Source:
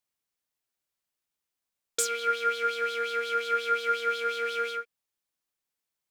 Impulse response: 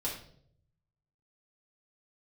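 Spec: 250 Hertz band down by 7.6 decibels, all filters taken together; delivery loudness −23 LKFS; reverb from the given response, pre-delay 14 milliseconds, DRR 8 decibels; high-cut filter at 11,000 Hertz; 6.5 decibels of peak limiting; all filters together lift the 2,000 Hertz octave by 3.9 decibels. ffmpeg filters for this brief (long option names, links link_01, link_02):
-filter_complex "[0:a]lowpass=11000,equalizer=frequency=250:width_type=o:gain=-8.5,equalizer=frequency=2000:width_type=o:gain=6.5,alimiter=limit=-20.5dB:level=0:latency=1,asplit=2[link_01][link_02];[1:a]atrim=start_sample=2205,adelay=14[link_03];[link_02][link_03]afir=irnorm=-1:irlink=0,volume=-11.5dB[link_04];[link_01][link_04]amix=inputs=2:normalize=0,volume=6.5dB"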